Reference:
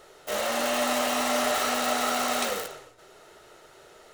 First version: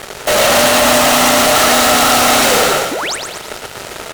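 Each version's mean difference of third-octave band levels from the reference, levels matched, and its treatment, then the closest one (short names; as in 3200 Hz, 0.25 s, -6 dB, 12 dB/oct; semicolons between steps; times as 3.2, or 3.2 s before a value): 6.5 dB: de-hum 58.36 Hz, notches 8; fuzz box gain 44 dB, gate -50 dBFS; painted sound rise, 2.91–3.16, 230–10000 Hz -23 dBFS; on a send: frequency-shifting echo 0.115 s, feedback 50%, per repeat +30 Hz, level -6.5 dB; on the sum: gain +2.5 dB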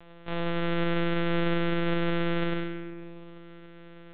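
14.0 dB: sample sorter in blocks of 128 samples; spring tank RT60 1.6 s, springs 49/58 ms, chirp 30 ms, DRR 7 dB; monotone LPC vocoder at 8 kHz 170 Hz; in parallel at -1.5 dB: compressor, threshold -36 dBFS, peak gain reduction 17 dB; on the sum: gain -4 dB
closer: first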